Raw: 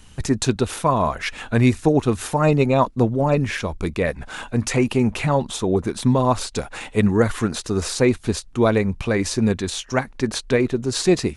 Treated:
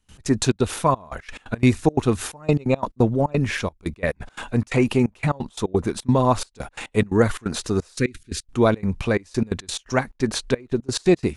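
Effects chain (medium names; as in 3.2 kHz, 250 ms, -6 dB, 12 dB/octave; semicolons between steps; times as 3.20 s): 7.98–8.44 s: Chebyshev band-stop 350–1700 Hz, order 2; trance gate ".x.xxx.xxxx..x.x" 175 bpm -24 dB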